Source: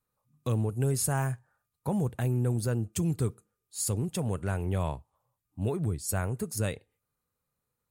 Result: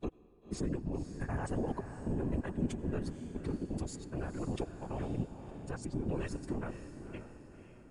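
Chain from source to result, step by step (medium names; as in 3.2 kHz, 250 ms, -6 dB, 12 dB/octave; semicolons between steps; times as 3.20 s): slices played last to first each 86 ms, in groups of 6; low-pass 8.7 kHz 12 dB/octave; tone controls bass -3 dB, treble -13 dB; compression 6:1, threshold -29 dBFS, peak gain reduction 4.5 dB; peak limiter -26.5 dBFS, peak gain reduction 7.5 dB; formant-preserving pitch shift -6.5 st; whisper effect; echo that smears into a reverb 525 ms, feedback 45%, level -9.5 dB; on a send at -19 dB: reverberation RT60 2.3 s, pre-delay 79 ms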